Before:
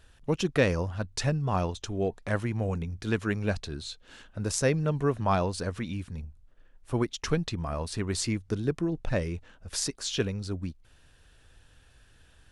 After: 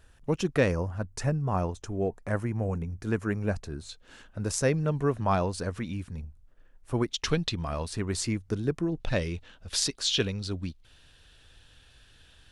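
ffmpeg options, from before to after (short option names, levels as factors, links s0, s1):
-af "asetnsamples=n=441:p=0,asendcmd='0.72 equalizer g -13;3.89 equalizer g -3;7.14 equalizer g 7.5;7.87 equalizer g -2.5;9 equalizer g 8.5',equalizer=f=3600:t=o:w=1.1:g=-4.5"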